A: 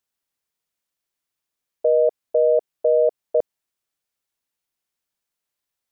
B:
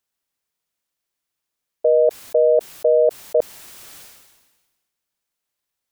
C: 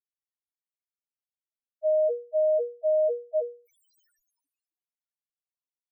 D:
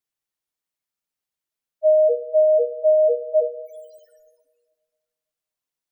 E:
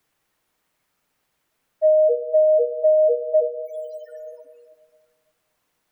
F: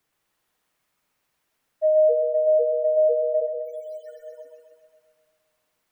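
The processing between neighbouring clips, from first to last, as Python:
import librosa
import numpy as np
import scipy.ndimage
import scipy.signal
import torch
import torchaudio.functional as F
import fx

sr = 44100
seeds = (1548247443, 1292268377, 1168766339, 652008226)

y1 = fx.sustainer(x, sr, db_per_s=44.0)
y1 = F.gain(torch.from_numpy(y1), 2.0).numpy()
y2 = fx.hum_notches(y1, sr, base_hz=60, count=8)
y2 = fx.spec_topn(y2, sr, count=1)
y2 = F.gain(torch.from_numpy(y2), -1.0).numpy()
y3 = fx.room_shoebox(y2, sr, seeds[0], volume_m3=1800.0, walls='mixed', distance_m=0.5)
y3 = F.gain(torch.from_numpy(y3), 7.5).numpy()
y4 = fx.band_squash(y3, sr, depth_pct=70)
y5 = fx.echo_thinned(y4, sr, ms=129, feedback_pct=70, hz=470.0, wet_db=-4)
y5 = F.gain(torch.from_numpy(y5), -4.0).numpy()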